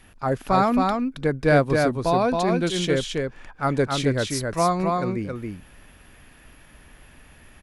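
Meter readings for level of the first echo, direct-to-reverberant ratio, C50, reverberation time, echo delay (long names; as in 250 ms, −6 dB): −3.5 dB, no reverb audible, no reverb audible, no reverb audible, 271 ms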